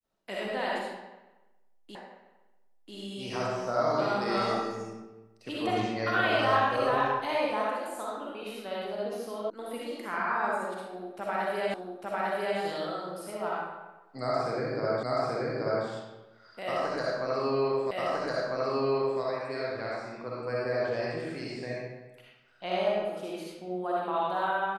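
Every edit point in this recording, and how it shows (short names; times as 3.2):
1.95 repeat of the last 0.99 s
9.5 sound cut off
11.74 repeat of the last 0.85 s
15.03 repeat of the last 0.83 s
17.91 repeat of the last 1.3 s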